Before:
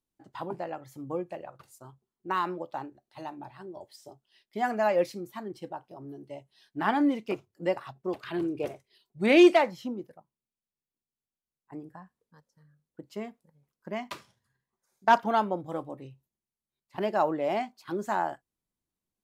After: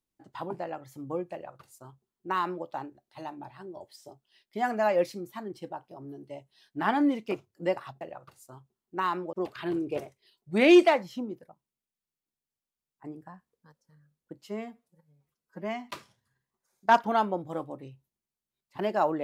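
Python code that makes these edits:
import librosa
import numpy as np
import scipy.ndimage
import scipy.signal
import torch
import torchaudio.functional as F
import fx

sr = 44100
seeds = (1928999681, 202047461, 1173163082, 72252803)

y = fx.edit(x, sr, fx.duplicate(start_s=1.33, length_s=1.32, to_s=8.01),
    fx.stretch_span(start_s=13.12, length_s=0.98, factor=1.5), tone=tone)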